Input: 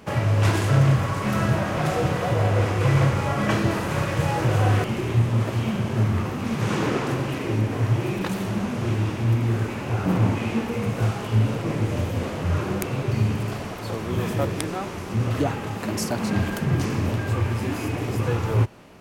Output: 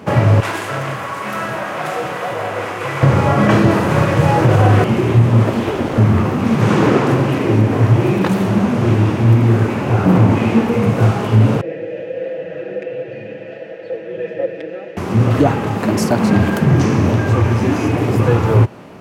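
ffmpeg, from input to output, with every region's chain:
-filter_complex "[0:a]asettb=1/sr,asplit=3[s0][s1][s2];[s0]atrim=end=0.404[s3];[s1]atrim=start=0.4:end=3.03,asetpts=PTS-STARTPTS,afade=t=in:d=0.004:c=qsin,afade=t=out:st=2.626:d=0.004:c=qsin,highpass=f=1400:p=1,equalizer=f=5100:t=o:w=1.4:g=-4[s4];[s2]atrim=start=3.026[s5];[s3][s4]acrossfade=d=0.004:c1=hsin:c2=qsin[s6];[s6][s5]acrossfade=d=0.004:c1=qsin:c2=hsin,asettb=1/sr,asplit=3[s7][s8][s9];[s7]atrim=end=5.534[s10];[s8]atrim=start=5.53:end=5.98,asetpts=PTS-STARTPTS,afade=t=in:d=0.004:c=qsin,afade=t=out:st=0.446:d=0.004:c=qsin,highpass=f=49:w=0.5412,highpass=f=49:w=1.3066,aeval=exprs='abs(val(0))':c=same[s11];[s9]atrim=start=5.976[s12];[s10][s11]acrossfade=d=0.004:c1=hsin:c2=qsin[s13];[s13][s12]acrossfade=d=0.004:c1=qsin:c2=hsin,asettb=1/sr,asplit=3[s14][s15][s16];[s14]atrim=end=11.614[s17];[s15]atrim=start=11.61:end=14.97,asetpts=PTS-STARTPTS,afade=t=in:d=0.004:c=qsin,afade=t=out:st=3.356:d=0.004:c=qsin,acrossover=split=6900[s18][s19];[s19]acompressor=threshold=0.00158:ratio=4:attack=1:release=60[s20];[s18][s20]amix=inputs=2:normalize=0,asplit=3[s21][s22][s23];[s21]bandpass=f=530:t=q:w=8,volume=1[s24];[s22]bandpass=f=1840:t=q:w=8,volume=0.501[s25];[s23]bandpass=f=2480:t=q:w=8,volume=0.355[s26];[s24][s25][s26]amix=inputs=3:normalize=0,aecho=1:1:6.1:0.81,atrim=end_sample=148176[s27];[s16]atrim=start=14.966[s28];[s17][s27]acrossfade=d=0.004:c1=hsin:c2=qsin[s29];[s29][s28]acrossfade=d=0.004:c1=qsin:c2=hsin,asettb=1/sr,asplit=3[s30][s31][s32];[s30]atrim=end=16.704[s33];[s31]atrim=start=16.7:end=17.91,asetpts=PTS-STARTPTS,afade=t=in:d=0.004:c=qsin,afade=t=out:st=1.206:d=0.004:c=qsin,equalizer=f=6000:t=o:w=0.23:g=6.5,asoftclip=type=hard:threshold=0.158,acrossover=split=8400[s34][s35];[s35]acompressor=threshold=0.00251:ratio=4:attack=1:release=60[s36];[s34][s36]amix=inputs=2:normalize=0[s37];[s32]atrim=start=17.906[s38];[s33][s37]acrossfade=d=0.004:c1=hsin:c2=qsin[s39];[s39][s38]acrossfade=d=0.004:c1=qsin:c2=hsin,highpass=100,highshelf=f=2200:g=-9,alimiter=level_in=4.47:limit=0.891:release=50:level=0:latency=1,volume=0.891"

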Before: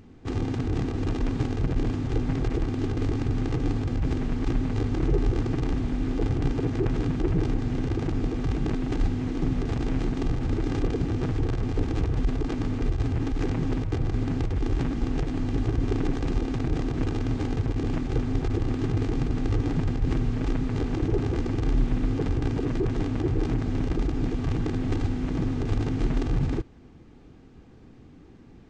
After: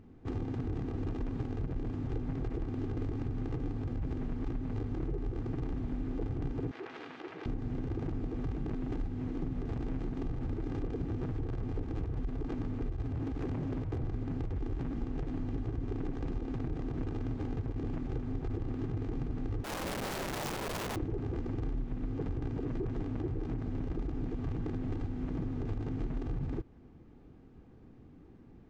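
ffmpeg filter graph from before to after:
-filter_complex "[0:a]asettb=1/sr,asplit=3[s0][s1][s2];[s0]atrim=end=6.714[s3];[s1]atrim=start=6.71:end=7.46,asetpts=PTS-STARTPTS,afade=t=in:d=0.004:c=qsin,afade=t=out:st=0.746:d=0.004:c=qsin,tiltshelf=f=900:g=-9.5,asoftclip=type=hard:threshold=0.0794,highpass=410,lowpass=4000[s4];[s2]atrim=start=7.456[s5];[s3][s4]acrossfade=d=0.004:c1=hsin:c2=qsin[s6];[s6][s5]acrossfade=d=0.004:c1=qsin:c2=hsin,asettb=1/sr,asplit=3[s7][s8][s9];[s7]atrim=end=13.124[s10];[s8]atrim=start=13.12:end=14.03,asetpts=PTS-STARTPTS,afade=t=in:d=0.004:c=qsin,afade=t=out:st=0.906:d=0.004:c=qsin,highpass=f=40:w=0.5412,highpass=f=40:w=1.3066,volume=15,asoftclip=hard,volume=0.0668[s11];[s9]atrim=start=14.026[s12];[s10][s11]acrossfade=d=0.004:c1=hsin:c2=qsin[s13];[s13][s12]acrossfade=d=0.004:c1=qsin:c2=hsin,asettb=1/sr,asplit=3[s14][s15][s16];[s14]atrim=end=19.644[s17];[s15]atrim=start=19.64:end=20.96,asetpts=PTS-STARTPTS,afade=t=in:d=0.004:c=qsin,afade=t=out:st=1.316:d=0.004:c=qsin,aeval=exprs='(mod(20*val(0)+1,2)-1)/20':c=same,highshelf=f=2700:g=9.5[s18];[s16]atrim=start=20.956[s19];[s17][s18]acrossfade=d=0.004:c1=hsin:c2=qsin[s20];[s20][s19]acrossfade=d=0.004:c1=qsin:c2=hsin,highshelf=f=2400:g=-11.5,acompressor=threshold=0.0501:ratio=6,volume=0.562"

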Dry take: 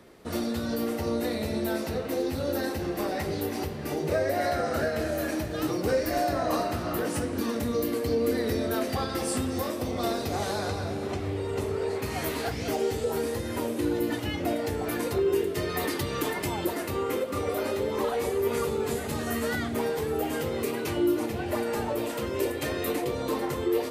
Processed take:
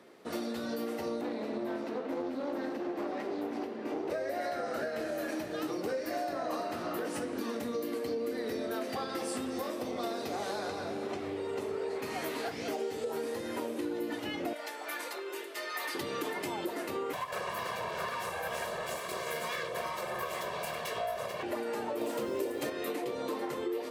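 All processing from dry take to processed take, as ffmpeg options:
-filter_complex "[0:a]asettb=1/sr,asplit=3[s0][s1][s2];[s0]atrim=end=1.214[s3];[s1]atrim=start=1.21:end=4.1,asetpts=PTS-STARTPTS,afade=t=in:d=0.004:c=qsin,afade=t=out:st=2.886:d=0.004:c=qsin,lowpass=f=2300:p=1,lowshelf=f=180:t=q:w=3:g=-11.5,aeval=exprs='clip(val(0),-1,0.0237)':c=same[s4];[s2]atrim=start=4.096[s5];[s3][s4]acrossfade=d=0.004:c1=hsin:c2=qsin[s6];[s6][s5]acrossfade=d=0.004:c1=qsin:c2=hsin,asettb=1/sr,asplit=3[s7][s8][s9];[s7]atrim=end=14.534[s10];[s8]atrim=start=14.53:end=15.95,asetpts=PTS-STARTPTS,afade=t=in:d=0.004:c=qsin,afade=t=out:st=1.416:d=0.004:c=qsin,highpass=840,aecho=1:1:3.4:0.41,atrim=end_sample=62622[s11];[s9]atrim=start=15.946[s12];[s10][s11]acrossfade=d=0.004:c1=hsin:c2=qsin[s13];[s13][s12]acrossfade=d=0.004:c1=qsin:c2=hsin,asettb=1/sr,asplit=3[s14][s15][s16];[s14]atrim=end=17.134[s17];[s15]atrim=start=17.13:end=21.43,asetpts=PTS-STARTPTS,afade=t=in:d=0.004:c=qsin,afade=t=out:st=4.296:d=0.004:c=qsin,aeval=exprs='abs(val(0))':c=same,aecho=1:1:1.8:0.97,atrim=end_sample=189630[s18];[s16]atrim=start=21.426[s19];[s17][s18]acrossfade=d=0.004:c1=hsin:c2=qsin[s20];[s20][s19]acrossfade=d=0.004:c1=qsin:c2=hsin,asettb=1/sr,asplit=3[s21][s22][s23];[s21]atrim=end=22.014[s24];[s22]atrim=start=22.01:end=22.7,asetpts=PTS-STARTPTS,afade=t=in:d=0.004:c=qsin,afade=t=out:st=0.686:d=0.004:c=qsin,equalizer=f=2300:w=0.58:g=-5.5,acontrast=80,acrusher=bits=8:dc=4:mix=0:aa=0.000001[s25];[s23]atrim=start=22.696[s26];[s24][s25]acrossfade=d=0.004:c1=hsin:c2=qsin[s27];[s27][s26]acrossfade=d=0.004:c1=qsin:c2=hsin,highpass=240,highshelf=f=6900:g=-6.5,acompressor=threshold=0.0316:ratio=4,volume=0.794"

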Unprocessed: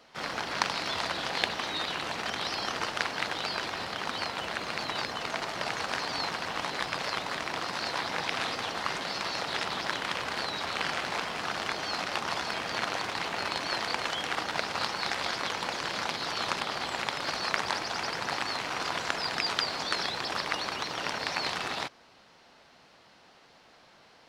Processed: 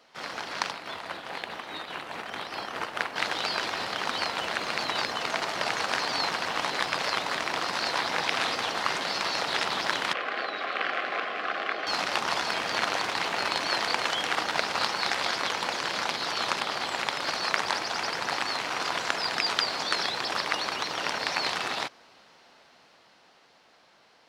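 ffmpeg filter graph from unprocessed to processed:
-filter_complex "[0:a]asettb=1/sr,asplit=3[s0][s1][s2];[s0]atrim=end=0.714[s3];[s1]atrim=start=0.71:end=3.16,asetpts=PTS-STARTPTS,afade=t=in:d=0.004:c=qsin,afade=t=out:st=2.446:d=0.004:c=qsin,equalizer=f=5500:t=o:w=1.4:g=-9,tremolo=f=4.8:d=0.46[s4];[s2]atrim=start=3.156[s5];[s3][s4]acrossfade=d=0.004:c1=hsin:c2=qsin[s6];[s6][s5]acrossfade=d=0.004:c1=qsin:c2=hsin,asettb=1/sr,asplit=3[s7][s8][s9];[s7]atrim=end=10.134[s10];[s8]atrim=start=10.13:end=11.87,asetpts=PTS-STARTPTS,afade=t=in:d=0.004:c=qsin,afade=t=out:st=1.736:d=0.004:c=qsin,asuperstop=centerf=920:order=8:qfactor=5,acrossover=split=240 3200:gain=0.0708 1 0.0708[s11][s12][s13];[s11][s12][s13]amix=inputs=3:normalize=0[s14];[s9]atrim=start=11.866[s15];[s10][s14]acrossfade=d=0.004:c1=hsin:c2=qsin[s16];[s16][s15]acrossfade=d=0.004:c1=qsin:c2=hsin,lowshelf=f=160:g=-9.5,dynaudnorm=f=200:g=21:m=2,volume=0.841"

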